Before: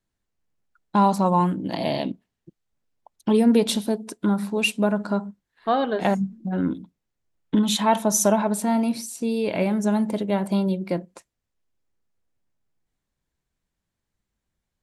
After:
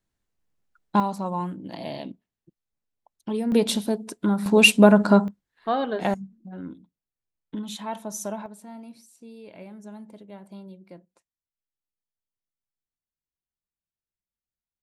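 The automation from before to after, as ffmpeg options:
ffmpeg -i in.wav -af "asetnsamples=nb_out_samples=441:pad=0,asendcmd='1 volume volume -9dB;3.52 volume volume -1dB;4.46 volume volume 8dB;5.28 volume volume -3dB;6.14 volume volume -13dB;8.46 volume volume -20dB',volume=0dB" out.wav

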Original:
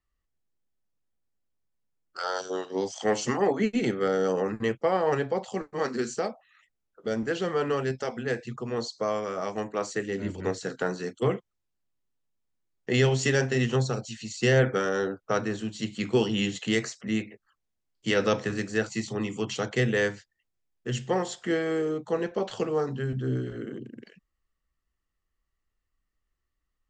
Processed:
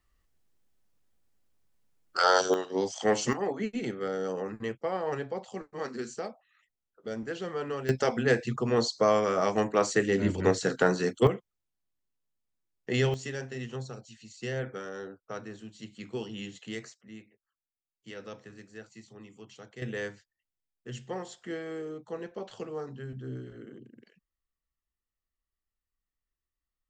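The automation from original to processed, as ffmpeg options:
ffmpeg -i in.wav -af "asetnsamples=nb_out_samples=441:pad=0,asendcmd='2.54 volume volume 0dB;3.33 volume volume -7dB;7.89 volume volume 5dB;11.27 volume volume -4dB;13.14 volume volume -12.5dB;16.94 volume volume -19dB;19.82 volume volume -10dB',volume=8.5dB" out.wav

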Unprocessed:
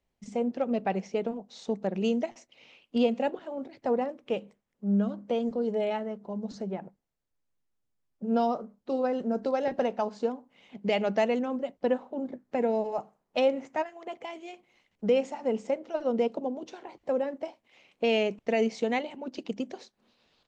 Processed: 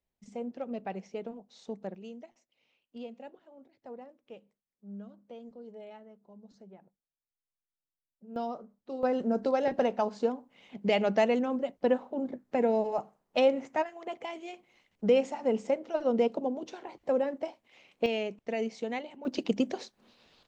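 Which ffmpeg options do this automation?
ffmpeg -i in.wav -af "asetnsamples=nb_out_samples=441:pad=0,asendcmd='1.95 volume volume -18dB;8.36 volume volume -8.5dB;9.03 volume volume 0.5dB;18.06 volume volume -6.5dB;19.25 volume volume 5.5dB',volume=-8.5dB" out.wav

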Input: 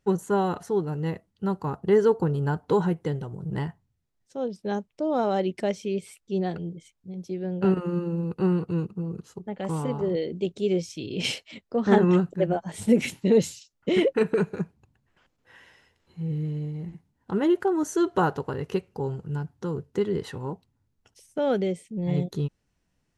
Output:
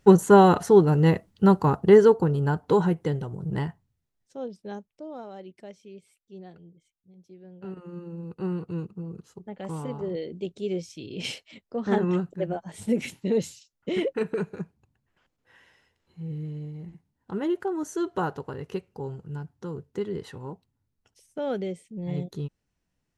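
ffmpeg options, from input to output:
ffmpeg -i in.wav -af "volume=21.5dB,afade=type=out:start_time=1.49:duration=0.72:silence=0.398107,afade=type=out:start_time=3.5:duration=1.17:silence=0.334965,afade=type=out:start_time=4.67:duration=0.61:silence=0.354813,afade=type=in:start_time=7.67:duration=1.06:silence=0.251189" out.wav

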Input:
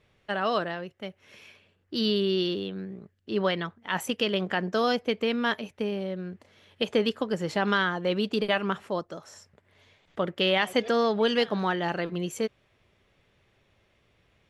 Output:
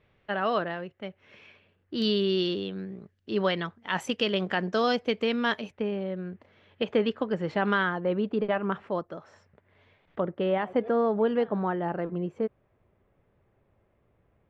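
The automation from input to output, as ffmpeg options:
ffmpeg -i in.wav -af "asetnsamples=nb_out_samples=441:pad=0,asendcmd='2.02 lowpass f 6300;5.72 lowpass f 2500;8 lowpass f 1400;8.72 lowpass f 2300;10.2 lowpass f 1100',lowpass=2900" out.wav

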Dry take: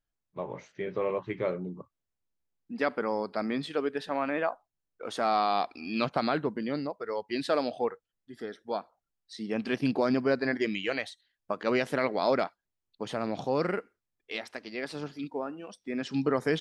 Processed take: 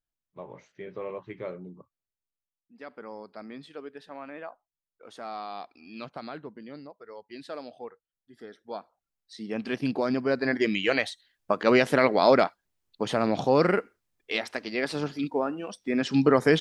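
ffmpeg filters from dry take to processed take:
ffmpeg -i in.wav -af "volume=19.5dB,afade=type=out:start_time=1.78:duration=0.94:silence=0.237137,afade=type=in:start_time=2.72:duration=0.35:silence=0.421697,afade=type=in:start_time=7.91:duration=1.69:silence=0.298538,afade=type=in:start_time=10.24:duration=0.75:silence=0.421697" out.wav

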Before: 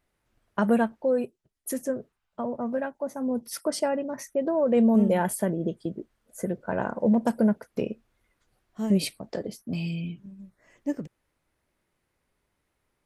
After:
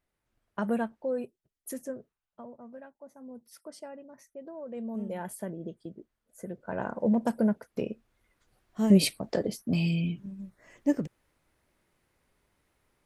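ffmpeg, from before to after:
ffmpeg -i in.wav -af "volume=14dB,afade=type=out:start_time=1.7:duration=0.9:silence=0.298538,afade=type=in:start_time=4.82:duration=0.58:silence=0.446684,afade=type=in:start_time=6.45:duration=0.49:silence=0.446684,afade=type=in:start_time=7.85:duration=1.16:silence=0.446684" out.wav

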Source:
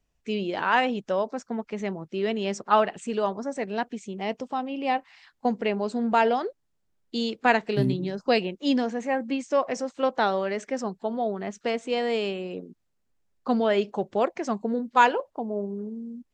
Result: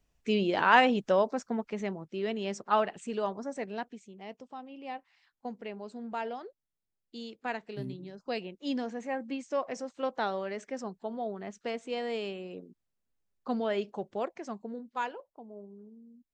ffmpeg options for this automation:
ffmpeg -i in.wav -af "volume=7.5dB,afade=type=out:start_time=1.11:duration=0.95:silence=0.446684,afade=type=out:start_time=3.6:duration=0.49:silence=0.375837,afade=type=in:start_time=8.14:duration=0.79:silence=0.473151,afade=type=out:start_time=13.87:duration=1.29:silence=0.354813" out.wav

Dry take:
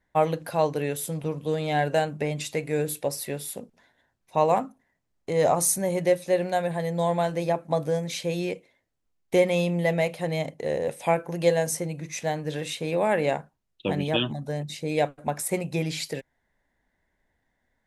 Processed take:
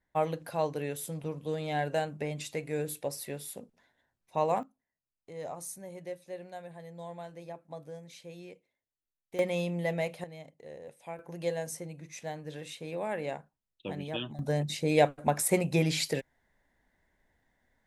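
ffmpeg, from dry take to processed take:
ffmpeg -i in.wav -af "asetnsamples=nb_out_samples=441:pad=0,asendcmd='4.63 volume volume -18.5dB;9.39 volume volume -7.5dB;10.24 volume volume -19dB;11.19 volume volume -11dB;14.39 volume volume 1dB',volume=-7dB" out.wav

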